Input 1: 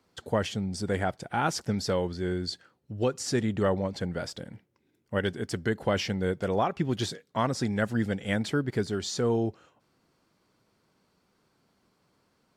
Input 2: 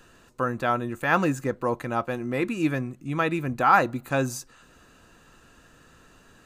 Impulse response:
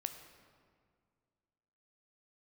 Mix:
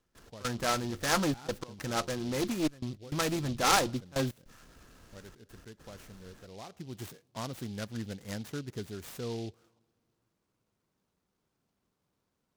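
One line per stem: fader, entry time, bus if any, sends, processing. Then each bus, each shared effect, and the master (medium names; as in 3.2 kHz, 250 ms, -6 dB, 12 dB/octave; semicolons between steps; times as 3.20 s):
-12.5 dB, 0.00 s, send -21 dB, auto duck -13 dB, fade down 0.35 s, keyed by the second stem
-3.5 dB, 0.00 s, no send, low-pass 6.4 kHz; trance gate ".x.xxxxxx" 101 bpm -24 dB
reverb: on, RT60 2.0 s, pre-delay 11 ms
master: bass shelf 81 Hz +9 dB; one-sided clip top -29.5 dBFS; delay time shaken by noise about 3.8 kHz, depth 0.078 ms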